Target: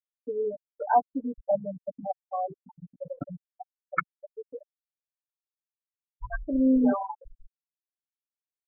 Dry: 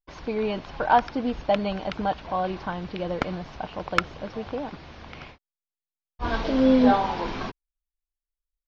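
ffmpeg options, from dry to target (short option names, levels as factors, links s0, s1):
-af "afftfilt=real='re*gte(hypot(re,im),0.282)':imag='im*gte(hypot(re,im),0.282)':win_size=1024:overlap=0.75,anlmdn=0.01,aecho=1:1:6.9:0.82,volume=0.562"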